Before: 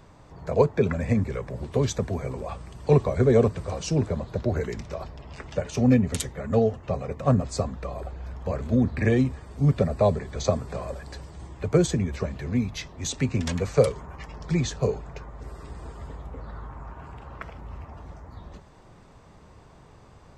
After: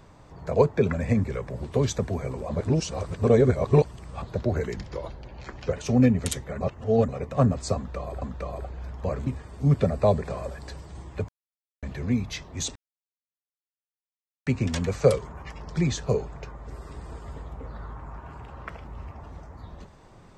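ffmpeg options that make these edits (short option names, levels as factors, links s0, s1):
-filter_complex "[0:a]asplit=13[s0][s1][s2][s3][s4][s5][s6][s7][s8][s9][s10][s11][s12];[s0]atrim=end=2.492[s13];[s1]atrim=start=2.488:end=4.222,asetpts=PTS-STARTPTS,areverse[s14];[s2]atrim=start=4.218:end=4.764[s15];[s3]atrim=start=4.76:end=5.61,asetpts=PTS-STARTPTS,asetrate=38808,aresample=44100[s16];[s4]atrim=start=5.606:end=6.492[s17];[s5]atrim=start=6.488:end=6.972,asetpts=PTS-STARTPTS,areverse[s18];[s6]atrim=start=6.968:end=8.102[s19];[s7]atrim=start=7.638:end=8.692[s20];[s8]atrim=start=9.238:end=10.212[s21];[s9]atrim=start=10.678:end=11.73,asetpts=PTS-STARTPTS,afade=t=out:st=1.048:d=0.004:c=hsin[s22];[s10]atrim=start=11.73:end=12.27,asetpts=PTS-STARTPTS,volume=0[s23];[s11]atrim=start=12.27:end=13.2,asetpts=PTS-STARTPTS,afade=t=in:d=0.004:c=hsin,afade=t=out:st=0.926:d=0.004:c=hsin,apad=pad_dur=1.71[s24];[s12]atrim=start=13.2,asetpts=PTS-STARTPTS,afade=t=in:d=0.004:c=hsin[s25];[s13][s14]acrossfade=d=0.004:c1=hsin:c2=hsin[s26];[s26][s15]acrossfade=d=0.004:c1=hsin:c2=hsin[s27];[s27][s16]acrossfade=d=0.004:c1=hsin:c2=hsin[s28];[s28][s17]acrossfade=d=0.004:c1=hsin:c2=hsin[s29];[s29][s18]acrossfade=d=0.004:c1=hsin:c2=hsin[s30];[s30][s19]acrossfade=d=0.004:c1=hsin:c2=hsin[s31];[s31][s20]acrossfade=d=0.004:c1=hsin:c2=hsin[s32];[s32][s21]acrossfade=d=0.004:c1=hsin:c2=hsin[s33];[s22][s23][s24][s25]concat=n=4:v=0:a=1[s34];[s33][s34]acrossfade=d=0.004:c1=hsin:c2=hsin"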